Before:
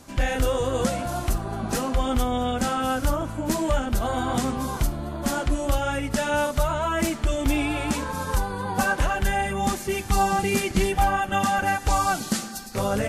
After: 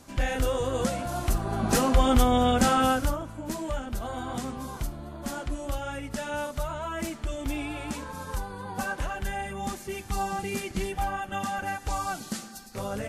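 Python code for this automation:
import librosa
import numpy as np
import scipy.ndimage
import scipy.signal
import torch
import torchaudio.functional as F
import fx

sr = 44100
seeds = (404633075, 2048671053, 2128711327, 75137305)

y = fx.gain(x, sr, db=fx.line((1.09, -3.5), (1.75, 3.0), (2.84, 3.0), (3.25, -8.5)))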